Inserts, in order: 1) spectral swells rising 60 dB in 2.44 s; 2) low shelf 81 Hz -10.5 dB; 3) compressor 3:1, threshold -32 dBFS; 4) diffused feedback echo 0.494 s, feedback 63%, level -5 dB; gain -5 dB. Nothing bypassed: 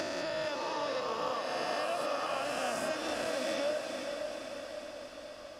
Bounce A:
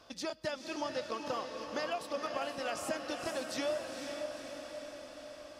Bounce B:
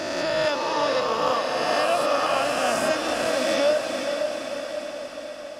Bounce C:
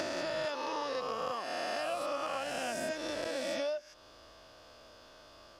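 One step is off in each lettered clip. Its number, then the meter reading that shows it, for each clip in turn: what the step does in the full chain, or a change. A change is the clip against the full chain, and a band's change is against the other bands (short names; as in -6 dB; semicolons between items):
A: 1, loudness change -3.5 LU; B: 3, mean gain reduction 7.5 dB; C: 4, echo-to-direct -3.0 dB to none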